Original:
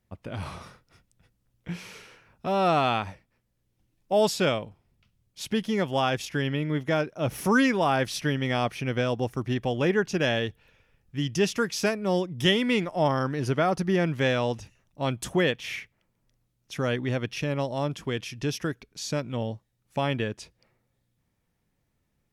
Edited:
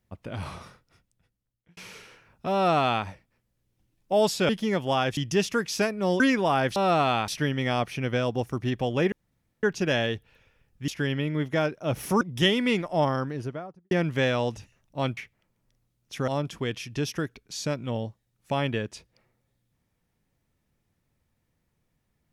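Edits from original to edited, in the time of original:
0.51–1.77 fade out
2.53–3.05 copy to 8.12
4.49–5.55 cut
6.23–7.56 swap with 11.21–12.24
9.96 insert room tone 0.51 s
13.01–13.94 studio fade out
15.2–15.76 cut
16.87–17.74 cut

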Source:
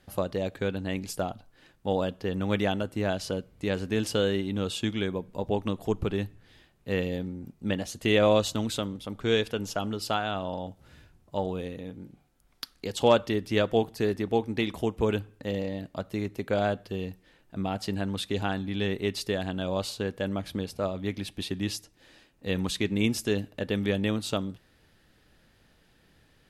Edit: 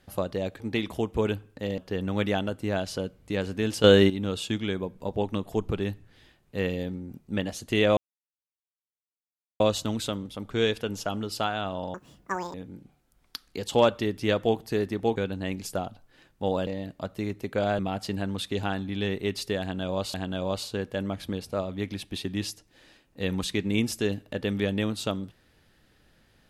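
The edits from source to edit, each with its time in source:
0.6–2.11 swap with 14.44–15.62
4.17–4.43 gain +9.5 dB
8.3 insert silence 1.63 s
10.64–11.82 speed 197%
16.74–17.58 cut
19.4–19.93 loop, 2 plays

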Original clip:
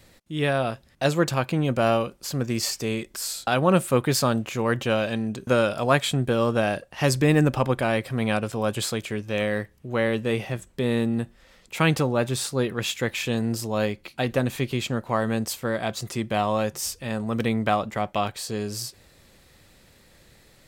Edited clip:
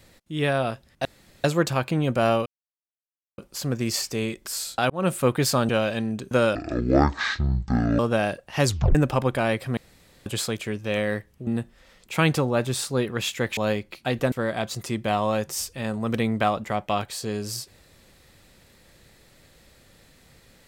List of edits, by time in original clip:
1.05 insert room tone 0.39 s
2.07 insert silence 0.92 s
3.59–3.84 fade in
4.38–4.85 cut
5.71–6.43 speed 50%
7.1 tape stop 0.29 s
8.21–8.7 room tone
9.91–11.09 cut
13.19–13.7 cut
14.45–15.58 cut

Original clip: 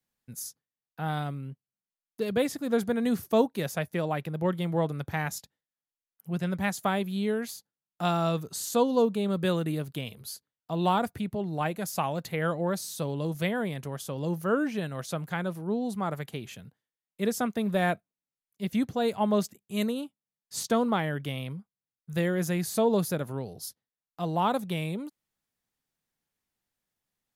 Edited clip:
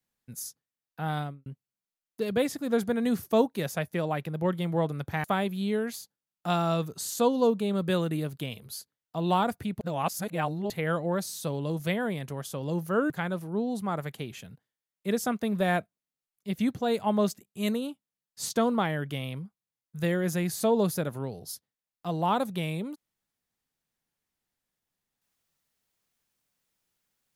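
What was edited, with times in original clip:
1.18–1.46 studio fade out
5.24–6.79 cut
11.36–12.25 reverse
14.65–15.24 cut

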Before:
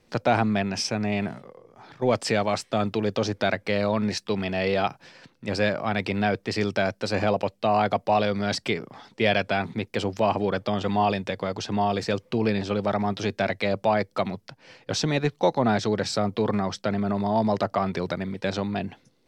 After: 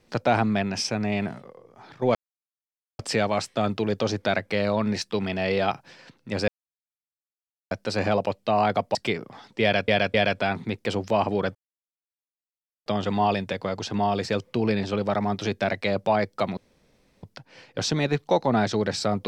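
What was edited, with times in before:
2.15 insert silence 0.84 s
5.64–6.87 mute
8.11–8.56 cut
9.23–9.49 loop, 3 plays
10.64 insert silence 1.31 s
14.35 insert room tone 0.66 s

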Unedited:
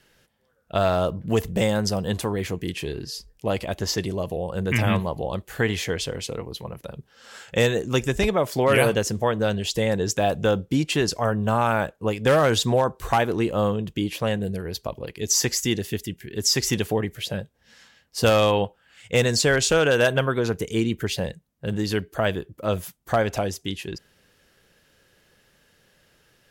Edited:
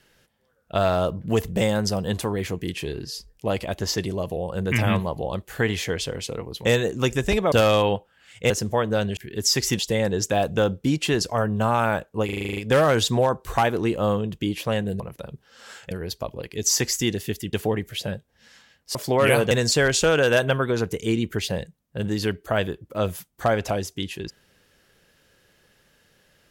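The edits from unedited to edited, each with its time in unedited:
6.65–7.56 move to 14.55
8.43–8.99 swap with 18.21–19.19
12.12 stutter 0.04 s, 9 plays
16.17–16.79 move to 9.66

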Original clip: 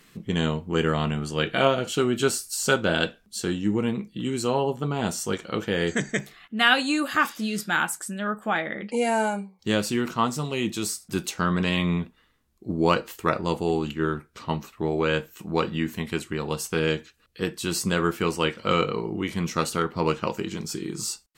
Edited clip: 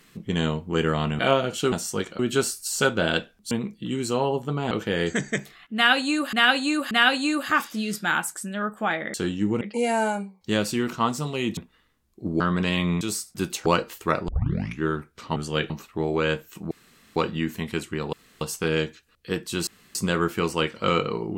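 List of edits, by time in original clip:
1.19–1.53 move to 14.54
3.38–3.85 move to 8.79
5.05–5.52 move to 2.06
6.56–7.14 loop, 3 plays
10.75–11.4 swap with 12.01–12.84
13.46 tape start 0.54 s
15.55 insert room tone 0.45 s
16.52 insert room tone 0.28 s
17.78 insert room tone 0.28 s

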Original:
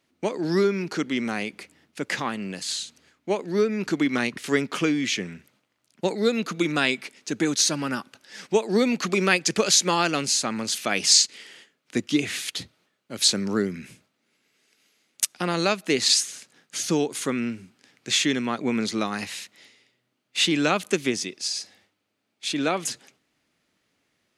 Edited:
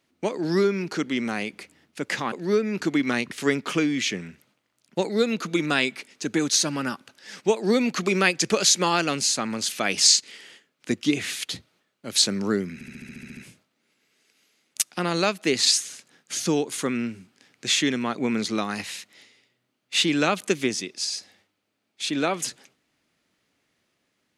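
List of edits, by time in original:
2.32–3.38 cut
13.8 stutter 0.07 s, 10 plays

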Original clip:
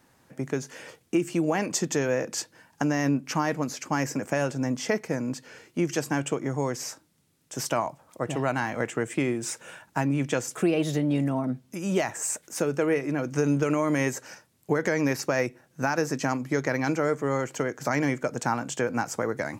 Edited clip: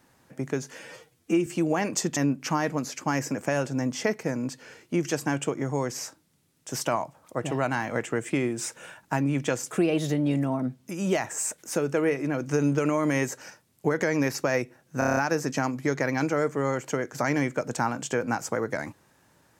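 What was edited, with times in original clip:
0.79–1.24 stretch 1.5×
1.94–3.01 cut
15.83 stutter 0.03 s, 7 plays

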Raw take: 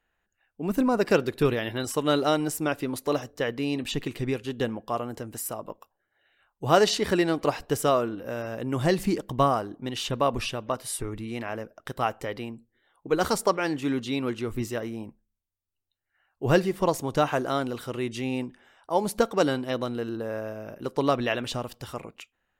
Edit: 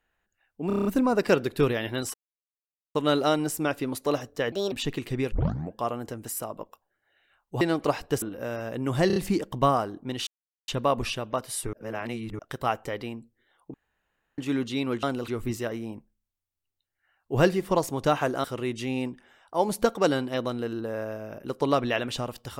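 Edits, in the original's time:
0.67 stutter 0.03 s, 7 plays
1.96 insert silence 0.81 s
3.53–3.81 speed 140%
4.41 tape start 0.42 s
6.7–7.2 cut
7.81–8.08 cut
8.93 stutter 0.03 s, 4 plays
10.04 insert silence 0.41 s
11.09–11.75 reverse
13.1–13.74 room tone
17.55–17.8 move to 14.39

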